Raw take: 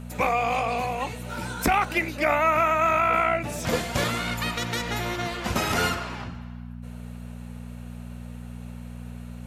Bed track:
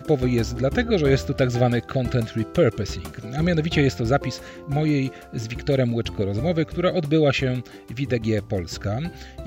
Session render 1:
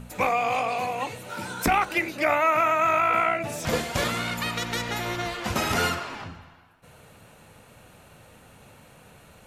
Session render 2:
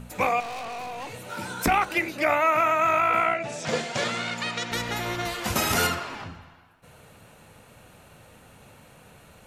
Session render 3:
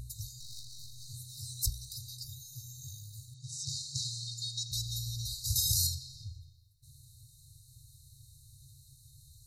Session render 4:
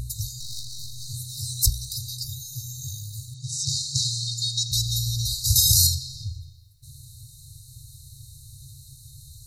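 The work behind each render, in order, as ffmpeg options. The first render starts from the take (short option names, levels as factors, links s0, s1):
-af "bandreject=f=60:t=h:w=4,bandreject=f=120:t=h:w=4,bandreject=f=180:t=h:w=4,bandreject=f=240:t=h:w=4,bandreject=f=300:t=h:w=4,bandreject=f=360:t=h:w=4,bandreject=f=420:t=h:w=4,bandreject=f=480:t=h:w=4,bandreject=f=540:t=h:w=4,bandreject=f=600:t=h:w=4,bandreject=f=660:t=h:w=4"
-filter_complex "[0:a]asettb=1/sr,asplit=3[s0][s1][s2];[s0]atrim=end=0.404[s3];[s1]atrim=start=0.4:end=1.14,asetpts=PTS-STARTPTS,afade=t=in:d=0.004:c=qsin,afade=t=out:st=0.736:d=0.004:c=qsin,aeval=exprs='(tanh(44.7*val(0)+0.3)-tanh(0.3))/44.7':c=same[s4];[s2]atrim=start=1.136[s5];[s3][s4]acrossfade=d=0.004:c1=hsin:c2=qsin[s6];[s6][s5]acrossfade=d=0.004:c1=qsin:c2=hsin,asettb=1/sr,asplit=3[s7][s8][s9];[s7]atrim=end=3.344[s10];[s8]atrim=start=3.34:end=4.72,asetpts=PTS-STARTPTS,afade=t=in:d=0.004:c=qsin,afade=t=out:st=1.376:d=0.004:c=qsin,highpass=f=130:w=0.5412,highpass=f=130:w=1.3066,equalizer=f=180:t=q:w=4:g=-4,equalizer=f=300:t=q:w=4:g=-6,equalizer=f=1100:t=q:w=4:g=-4,lowpass=f=7900:w=0.5412,lowpass=f=7900:w=1.3066[s11];[s9]atrim=start=4.716[s12];[s10][s11]acrossfade=d=0.004:c1=hsin:c2=qsin[s13];[s13][s12]acrossfade=d=0.004:c1=qsin:c2=hsin,asettb=1/sr,asplit=3[s14][s15][s16];[s14]atrim=end=5.254[s17];[s15]atrim=start=5.25:end=5.87,asetpts=PTS-STARTPTS,afade=t=in:d=0.004:c=qsin,afade=t=out:st=0.616:d=0.004:c=qsin,highshelf=f=7000:g=11[s18];[s16]atrim=start=5.866[s19];[s17][s18]acrossfade=d=0.004:c1=hsin:c2=qsin[s20];[s20][s19]acrossfade=d=0.004:c1=qsin:c2=hsin"
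-af "afftfilt=real='re*(1-between(b*sr/4096,140,3700))':imag='im*(1-between(b*sr/4096,140,3700))':win_size=4096:overlap=0.75"
-af "volume=3.76,alimiter=limit=0.708:level=0:latency=1"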